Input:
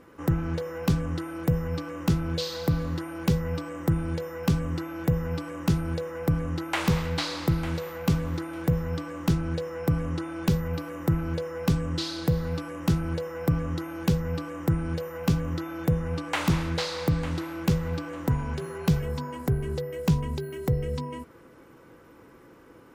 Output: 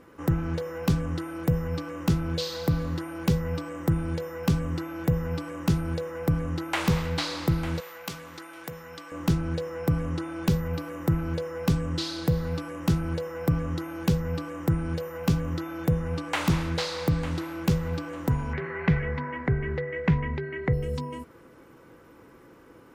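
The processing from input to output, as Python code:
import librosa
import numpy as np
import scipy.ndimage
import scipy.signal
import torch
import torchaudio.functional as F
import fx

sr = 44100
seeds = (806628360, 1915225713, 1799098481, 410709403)

y = fx.highpass(x, sr, hz=1300.0, slope=6, at=(7.8, 9.12))
y = fx.lowpass_res(y, sr, hz=2000.0, q=5.4, at=(18.53, 20.73))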